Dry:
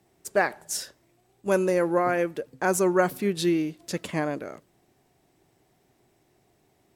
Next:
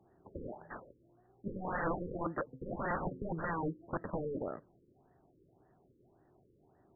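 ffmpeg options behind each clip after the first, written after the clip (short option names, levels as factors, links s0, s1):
-af "aeval=exprs='(mod(20*val(0)+1,2)-1)/20':c=same,afftfilt=real='re*lt(b*sr/1024,530*pow(2000/530,0.5+0.5*sin(2*PI*1.8*pts/sr)))':imag='im*lt(b*sr/1024,530*pow(2000/530,0.5+0.5*sin(2*PI*1.8*pts/sr)))':win_size=1024:overlap=0.75,volume=0.891"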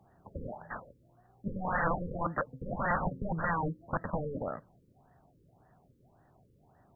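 -af "equalizer=f=360:w=1.9:g=-12.5,volume=2.24"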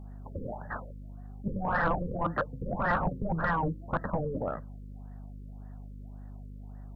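-af "asoftclip=type=tanh:threshold=0.0891,aeval=exprs='val(0)+0.00501*(sin(2*PI*50*n/s)+sin(2*PI*2*50*n/s)/2+sin(2*PI*3*50*n/s)/3+sin(2*PI*4*50*n/s)/4+sin(2*PI*5*50*n/s)/5)':c=same,volume=1.5"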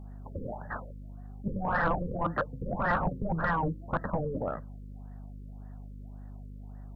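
-af anull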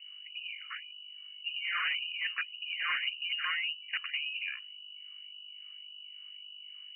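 -af "lowpass=f=2600:t=q:w=0.5098,lowpass=f=2600:t=q:w=0.6013,lowpass=f=2600:t=q:w=0.9,lowpass=f=2600:t=q:w=2.563,afreqshift=-3000,volume=0.562"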